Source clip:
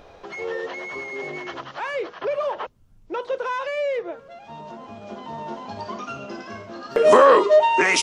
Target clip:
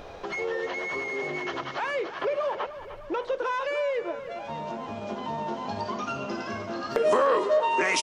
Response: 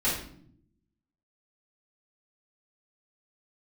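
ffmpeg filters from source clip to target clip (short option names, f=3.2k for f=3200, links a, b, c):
-filter_complex "[0:a]acompressor=threshold=-36dB:ratio=2,asplit=2[a][b];[b]aecho=0:1:302|604|906|1208|1510|1812|2114:0.224|0.134|0.0806|0.0484|0.029|0.0174|0.0104[c];[a][c]amix=inputs=2:normalize=0,volume=4.5dB"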